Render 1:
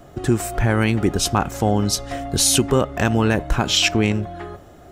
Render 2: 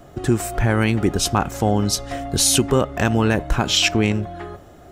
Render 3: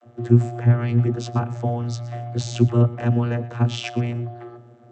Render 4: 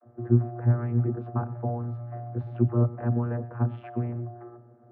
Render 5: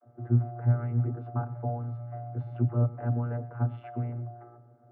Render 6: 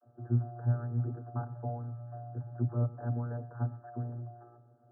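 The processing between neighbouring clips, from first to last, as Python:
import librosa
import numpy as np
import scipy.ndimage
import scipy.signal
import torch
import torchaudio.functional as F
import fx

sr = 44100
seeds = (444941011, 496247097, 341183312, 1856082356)

y1 = x
y2 = fx.vocoder(y1, sr, bands=32, carrier='saw', carrier_hz=119.0)
y2 = y2 + 10.0 ** (-18.0 / 20.0) * np.pad(y2, (int(120 * sr / 1000.0), 0))[:len(y2)]
y3 = scipy.signal.sosfilt(scipy.signal.butter(4, 1500.0, 'lowpass', fs=sr, output='sos'), y2)
y3 = y3 * librosa.db_to_amplitude(-6.0)
y4 = y3 + 0.55 * np.pad(y3, (int(7.0 * sr / 1000.0), 0))[:len(y3)]
y4 = y4 * librosa.db_to_amplitude(-4.5)
y5 = fx.brickwall_lowpass(y4, sr, high_hz=1800.0)
y5 = y5 * librosa.db_to_amplitude(-5.0)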